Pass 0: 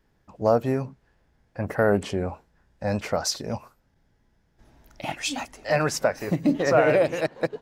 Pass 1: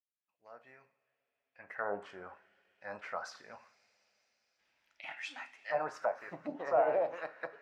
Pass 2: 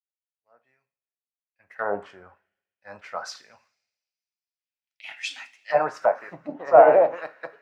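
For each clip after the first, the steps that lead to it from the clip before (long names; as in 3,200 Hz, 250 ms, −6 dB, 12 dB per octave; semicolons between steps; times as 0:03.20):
fade in at the beginning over 2.28 s; coupled-rooms reverb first 0.43 s, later 4.7 s, from −21 dB, DRR 8.5 dB; envelope filter 800–2,600 Hz, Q 2.7, down, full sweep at −17 dBFS; level −4.5 dB
multiband upward and downward expander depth 100%; level +7 dB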